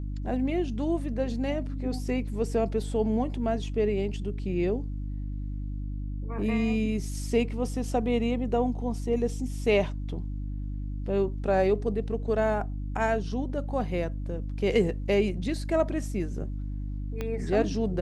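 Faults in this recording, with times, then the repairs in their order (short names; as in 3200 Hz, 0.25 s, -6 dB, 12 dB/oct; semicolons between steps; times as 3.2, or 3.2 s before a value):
hum 50 Hz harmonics 6 -33 dBFS
17.21 pop -19 dBFS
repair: de-click; de-hum 50 Hz, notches 6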